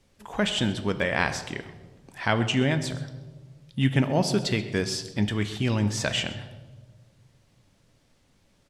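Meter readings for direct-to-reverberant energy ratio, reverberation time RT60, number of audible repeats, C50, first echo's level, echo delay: 8.5 dB, 1.4 s, 1, 11.0 dB, -18.0 dB, 0.131 s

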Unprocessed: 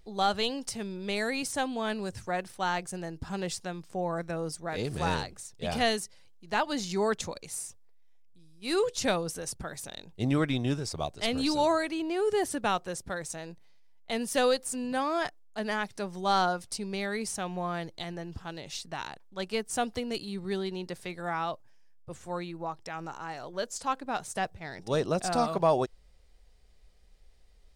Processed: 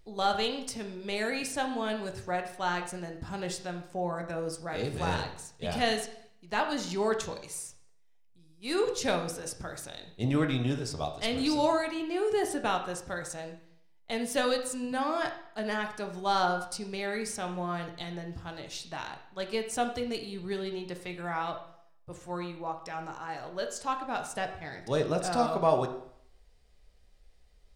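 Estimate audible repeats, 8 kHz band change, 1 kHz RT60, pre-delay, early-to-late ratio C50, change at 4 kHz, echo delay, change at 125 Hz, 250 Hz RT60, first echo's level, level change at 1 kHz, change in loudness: none, -2.0 dB, 0.65 s, 5 ms, 8.5 dB, -1.0 dB, none, -0.5 dB, 0.65 s, none, -0.5 dB, -0.5 dB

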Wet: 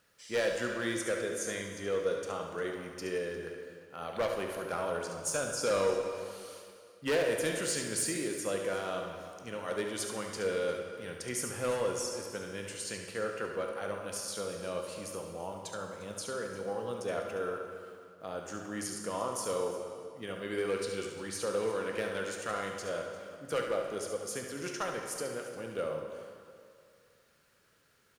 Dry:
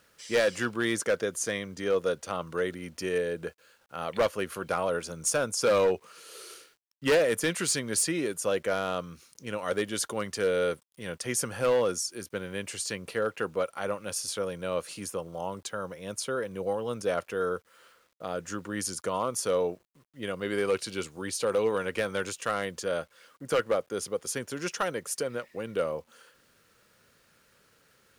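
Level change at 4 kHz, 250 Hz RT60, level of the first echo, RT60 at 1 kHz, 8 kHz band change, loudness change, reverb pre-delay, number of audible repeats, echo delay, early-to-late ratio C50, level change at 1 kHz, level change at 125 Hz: -5.0 dB, 2.1 s, -9.0 dB, 2.2 s, -5.0 dB, -5.0 dB, 15 ms, 2, 71 ms, 3.0 dB, -4.5 dB, -5.0 dB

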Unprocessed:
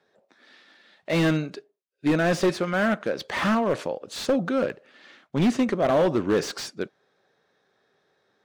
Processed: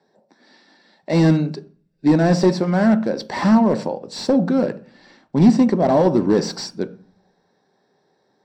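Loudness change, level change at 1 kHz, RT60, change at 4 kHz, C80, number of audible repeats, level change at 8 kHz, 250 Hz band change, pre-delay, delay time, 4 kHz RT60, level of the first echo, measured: +6.5 dB, +5.0 dB, 0.40 s, +2.0 dB, 22.5 dB, none, +2.5 dB, +9.0 dB, 3 ms, none, 0.40 s, none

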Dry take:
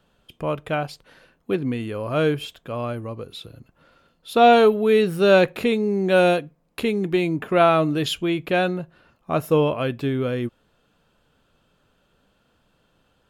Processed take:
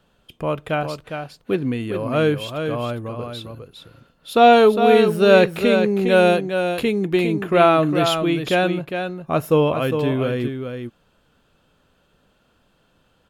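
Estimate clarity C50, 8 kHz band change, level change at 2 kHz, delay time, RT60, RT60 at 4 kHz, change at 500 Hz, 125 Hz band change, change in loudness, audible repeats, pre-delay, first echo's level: none, n/a, +3.0 dB, 0.407 s, none, none, +3.0 dB, +2.5 dB, +2.5 dB, 1, none, -7.0 dB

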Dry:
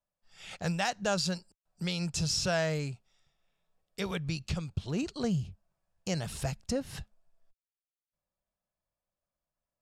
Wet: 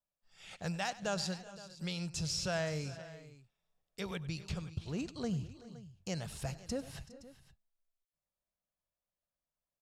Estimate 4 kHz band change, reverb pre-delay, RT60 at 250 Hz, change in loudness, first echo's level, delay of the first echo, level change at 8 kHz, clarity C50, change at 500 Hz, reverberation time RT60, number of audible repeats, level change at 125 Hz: -6.0 dB, none, none, -6.0 dB, -17.5 dB, 97 ms, -5.5 dB, none, -6.0 dB, none, 4, -5.5 dB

